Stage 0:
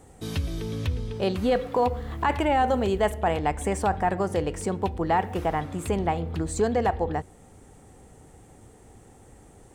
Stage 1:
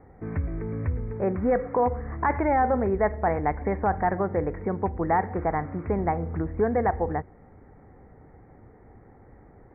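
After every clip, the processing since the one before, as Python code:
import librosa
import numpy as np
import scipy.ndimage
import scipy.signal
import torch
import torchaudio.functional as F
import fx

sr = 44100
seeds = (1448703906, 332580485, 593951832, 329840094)

y = scipy.signal.sosfilt(scipy.signal.butter(16, 2200.0, 'lowpass', fs=sr, output='sos'), x)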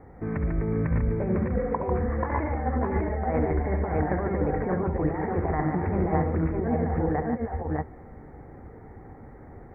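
y = fx.over_compress(x, sr, threshold_db=-27.0, ratio=-0.5)
y = fx.echo_multitap(y, sr, ms=(68, 146, 600, 613), db=(-9.0, -6.0, -6.5, -4.0))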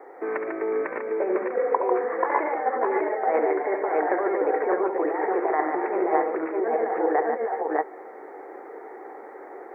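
y = fx.rider(x, sr, range_db=4, speed_s=2.0)
y = scipy.signal.sosfilt(scipy.signal.ellip(4, 1.0, 80, 360.0, 'highpass', fs=sr, output='sos'), y)
y = y * 10.0 ** (6.5 / 20.0)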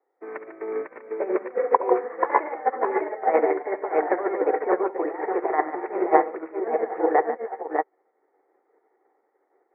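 y = fx.notch(x, sr, hz=1600.0, q=23.0)
y = fx.upward_expand(y, sr, threshold_db=-43.0, expansion=2.5)
y = y * 10.0 ** (6.5 / 20.0)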